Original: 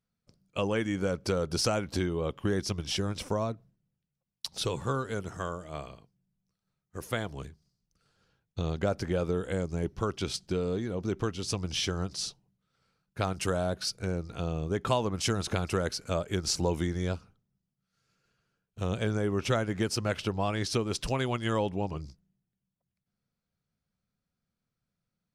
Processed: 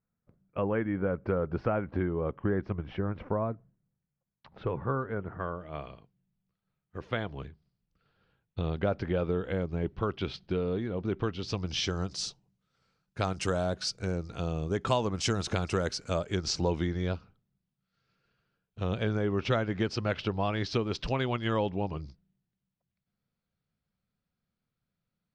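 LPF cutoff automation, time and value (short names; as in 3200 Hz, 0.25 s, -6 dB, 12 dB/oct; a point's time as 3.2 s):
LPF 24 dB/oct
5.34 s 1900 Hz
5.86 s 3600 Hz
11.14 s 3600 Hz
12.16 s 7800 Hz
16.12 s 7800 Hz
16.87 s 4600 Hz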